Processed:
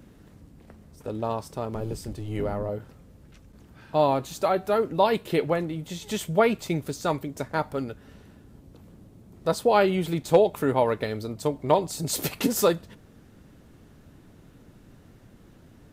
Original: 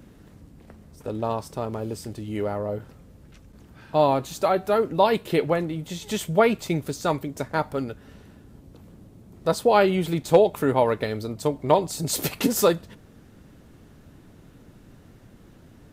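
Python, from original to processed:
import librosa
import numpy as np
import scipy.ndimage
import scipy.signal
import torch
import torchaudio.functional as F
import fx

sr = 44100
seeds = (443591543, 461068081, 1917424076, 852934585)

y = fx.octave_divider(x, sr, octaves=1, level_db=0.0, at=(1.74, 2.69))
y = y * librosa.db_to_amplitude(-2.0)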